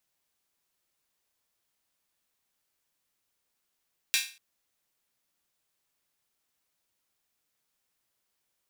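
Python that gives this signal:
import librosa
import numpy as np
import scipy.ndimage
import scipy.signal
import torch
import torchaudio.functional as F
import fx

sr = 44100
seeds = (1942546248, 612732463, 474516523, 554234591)

y = fx.drum_hat_open(sr, length_s=0.24, from_hz=2400.0, decay_s=0.36)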